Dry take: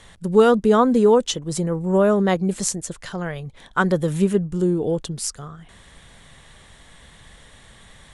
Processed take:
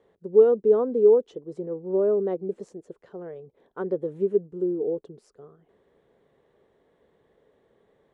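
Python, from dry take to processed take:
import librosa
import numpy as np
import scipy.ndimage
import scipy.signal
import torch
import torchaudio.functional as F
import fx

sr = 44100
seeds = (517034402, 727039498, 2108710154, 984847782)

y = fx.bandpass_q(x, sr, hz=420.0, q=4.0)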